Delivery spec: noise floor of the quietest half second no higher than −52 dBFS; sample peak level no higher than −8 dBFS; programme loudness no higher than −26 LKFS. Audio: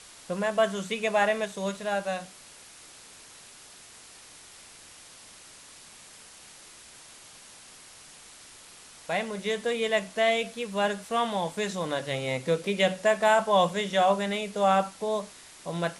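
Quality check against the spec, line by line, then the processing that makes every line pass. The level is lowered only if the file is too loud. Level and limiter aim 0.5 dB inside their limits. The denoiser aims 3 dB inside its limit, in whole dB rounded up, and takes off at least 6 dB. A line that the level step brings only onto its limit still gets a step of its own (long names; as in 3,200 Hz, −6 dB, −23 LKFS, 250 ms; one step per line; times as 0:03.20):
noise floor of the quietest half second −50 dBFS: out of spec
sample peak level −10.0 dBFS: in spec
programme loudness −27.0 LKFS: in spec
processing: broadband denoise 6 dB, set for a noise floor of −50 dBFS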